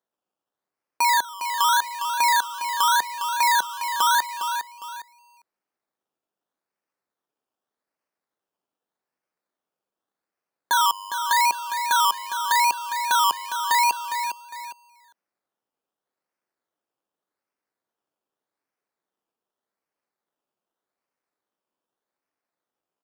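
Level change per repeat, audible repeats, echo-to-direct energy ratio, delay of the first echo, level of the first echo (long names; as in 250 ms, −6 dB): −9.5 dB, 2, −8.5 dB, 407 ms, −9.0 dB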